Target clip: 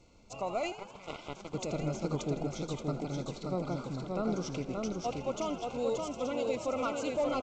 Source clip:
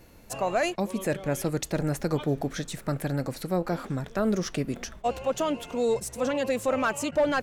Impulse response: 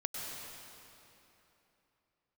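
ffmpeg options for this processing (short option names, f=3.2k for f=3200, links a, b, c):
-filter_complex "[0:a]asplit=2[a][b];[b]aecho=0:1:579|1158|1737|2316:0.708|0.241|0.0818|0.0278[c];[a][c]amix=inputs=2:normalize=0,asettb=1/sr,asplit=3[d][e][f];[d]atrim=end=0.724[g];[e]atrim=start=0.72:end=1.54,asetpts=PTS-STARTPTS,afade=t=in:d=0.004:c=qsin,afade=t=out:st=0.816:d=0.004:c=qsin,aeval=exprs='0.168*(cos(1*acos(clip(val(0)/0.168,-1,1)))-cos(1*PI/2))+0.075*(cos(3*acos(clip(val(0)/0.168,-1,1)))-cos(3*PI/2))+0.00531*(cos(5*acos(clip(val(0)/0.168,-1,1)))-cos(5*PI/2))+0.00376*(cos(7*acos(clip(val(0)/0.168,-1,1)))-cos(7*PI/2))':c=same[h];[f]atrim=start=1.536[i];[g][h]acrossfade=d=0.004:c1=hsin:c2=qsin[j];[j][i]acrossfade=d=0.004:c1=qsin:c2=hsin,asuperstop=centerf=1700:order=20:qfactor=3.1,asplit=2[k][l];[l]asplit=6[m][n][o][p][q][r];[m]adelay=81,afreqshift=77,volume=-14dB[s];[n]adelay=162,afreqshift=154,volume=-18.7dB[t];[o]adelay=243,afreqshift=231,volume=-23.5dB[u];[p]adelay=324,afreqshift=308,volume=-28.2dB[v];[q]adelay=405,afreqshift=385,volume=-32.9dB[w];[r]adelay=486,afreqshift=462,volume=-37.7dB[x];[s][t][u][v][w][x]amix=inputs=6:normalize=0[y];[k][y]amix=inputs=2:normalize=0,volume=-8dB" -ar 16000 -c:a g722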